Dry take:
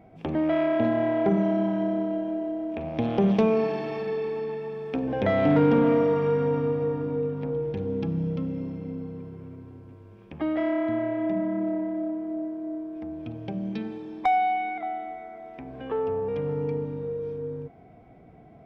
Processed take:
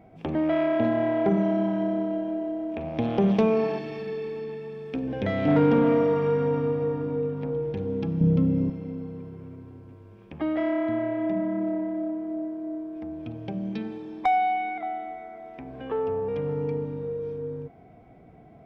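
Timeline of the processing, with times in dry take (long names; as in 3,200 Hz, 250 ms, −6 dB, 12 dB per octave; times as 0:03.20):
0:03.78–0:05.48: parametric band 870 Hz −8 dB 1.7 octaves
0:08.21–0:08.70: low-shelf EQ 460 Hz +10 dB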